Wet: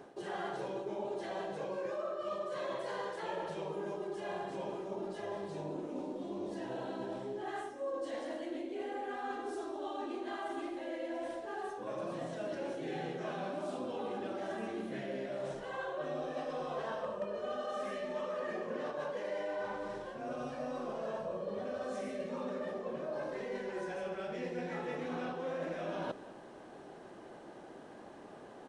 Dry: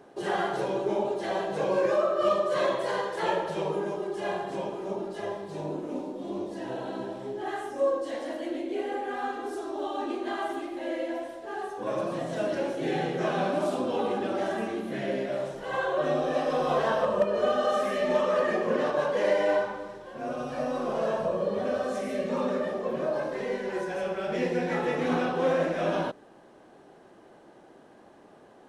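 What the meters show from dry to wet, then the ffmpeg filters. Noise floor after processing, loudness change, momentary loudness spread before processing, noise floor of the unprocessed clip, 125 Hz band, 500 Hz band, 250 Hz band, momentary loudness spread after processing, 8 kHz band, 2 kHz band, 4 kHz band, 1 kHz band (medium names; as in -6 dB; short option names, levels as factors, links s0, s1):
-52 dBFS, -10.5 dB, 10 LU, -54 dBFS, -10.0 dB, -11.0 dB, -9.5 dB, 3 LU, no reading, -10.5 dB, -10.5 dB, -10.0 dB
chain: -af "areverse,acompressor=threshold=0.01:ratio=5,areverse,aecho=1:1:199:0.126,aresample=22050,aresample=44100,volume=1.26"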